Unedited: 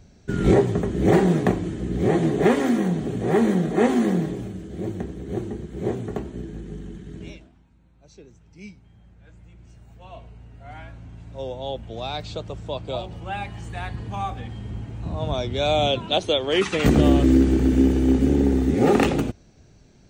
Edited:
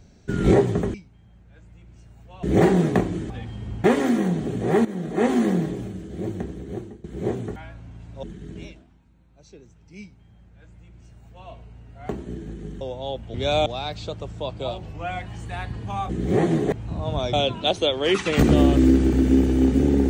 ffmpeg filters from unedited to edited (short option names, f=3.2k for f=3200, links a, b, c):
-filter_complex "[0:a]asplit=18[a][b][c][d][e][f][g][h][i][j][k][l][m][n][o][p][q][r];[a]atrim=end=0.942[s];[b]atrim=start=8.648:end=10.142[t];[c]atrim=start=0.938:end=1.812[u];[d]atrim=start=14.328:end=14.872[v];[e]atrim=start=2.438:end=3.45,asetpts=PTS-STARTPTS,afade=t=out:st=1.008:d=0.004:c=hsin:silence=0.16788[w];[f]atrim=start=3.45:end=5.64,asetpts=PTS-STARTPTS,afade=t=in:d=0.5:silence=0.16788,afade=t=out:st=1.7:d=0.49:silence=0.11885[x];[g]atrim=start=5.64:end=6.162,asetpts=PTS-STARTPTS,afade=t=in:d=0.004:c=hsin:silence=0.11885[y];[h]atrim=start=10.738:end=11.412[z];[i]atrim=start=6.878:end=10.742[aa];[j]atrim=start=6.158:end=6.882[ab];[k]atrim=start=11.408:end=11.942[ac];[l]atrim=start=15.478:end=15.802[ad];[m]atrim=start=11.938:end=13.124[ae];[n]atrim=start=13.12:end=13.5,asetpts=PTS-STARTPTS,asetrate=39690,aresample=44100[af];[o]atrim=start=13.496:end=14.332[ag];[p]atrim=start=1.808:end=2.442[ah];[q]atrim=start=14.868:end=15.482[ai];[r]atrim=start=15.798[aj];[s][t]acrossfade=d=0.004:c1=hsin:c2=hsin[ak];[ak][u]acrossfade=d=0.004:c1=hsin:c2=hsin[al];[al][v]acrossfade=d=0.004:c1=hsin:c2=hsin[am];[w][x][y]concat=n=3:v=0:a=1[an];[am][an]acrossfade=d=0.004:c1=hsin:c2=hsin[ao];[ao][z]acrossfade=d=0.004:c1=hsin:c2=hsin[ap];[ap][aa]acrossfade=d=0.004:c1=hsin:c2=hsin[aq];[aq][ab]acrossfade=d=0.004:c1=hsin:c2=hsin[ar];[ar][ac]acrossfade=d=0.004:c1=hsin:c2=hsin[as];[as][ad]acrossfade=d=0.004:c1=hsin:c2=hsin[at];[at][ae]acrossfade=d=0.004:c1=hsin:c2=hsin[au];[au][af]acrossfade=d=0.004:c1=hsin:c2=hsin[av];[av][ag]acrossfade=d=0.004:c1=hsin:c2=hsin[aw];[aw][ah]acrossfade=d=0.004:c1=hsin:c2=hsin[ax];[ax][ai]acrossfade=d=0.004:c1=hsin:c2=hsin[ay];[ay][aj]acrossfade=d=0.004:c1=hsin:c2=hsin"